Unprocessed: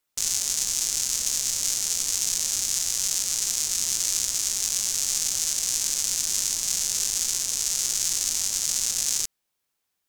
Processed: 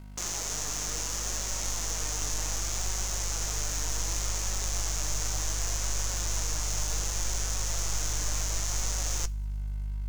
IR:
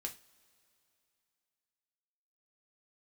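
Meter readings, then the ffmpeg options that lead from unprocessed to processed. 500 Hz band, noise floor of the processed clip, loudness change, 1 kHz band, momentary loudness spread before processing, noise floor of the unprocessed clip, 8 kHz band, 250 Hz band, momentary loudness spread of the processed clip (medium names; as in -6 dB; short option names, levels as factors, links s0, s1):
+6.5 dB, -33 dBFS, -7.5 dB, +6.5 dB, 1 LU, -79 dBFS, -8.5 dB, +4.0 dB, 1 LU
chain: -filter_complex "[0:a]asplit=2[s0][s1];[s1]highpass=f=720:p=1,volume=11.2,asoftclip=type=tanh:threshold=0.562[s2];[s0][s2]amix=inputs=2:normalize=0,lowpass=f=1500:p=1,volume=0.501,asplit=2[s3][s4];[1:a]atrim=start_sample=2205,asetrate=48510,aresample=44100[s5];[s4][s5]afir=irnorm=-1:irlink=0,volume=0.355[s6];[s3][s6]amix=inputs=2:normalize=0,aeval=exprs='val(0)+0.0112*(sin(2*PI*50*n/s)+sin(2*PI*2*50*n/s)/2+sin(2*PI*3*50*n/s)/3+sin(2*PI*4*50*n/s)/4+sin(2*PI*5*50*n/s)/5)':c=same,acrusher=bits=3:mode=log:mix=0:aa=0.000001,flanger=delay=5.3:depth=1.4:regen=66:speed=0.67:shape=sinusoidal,asubboost=boost=8:cutoff=75"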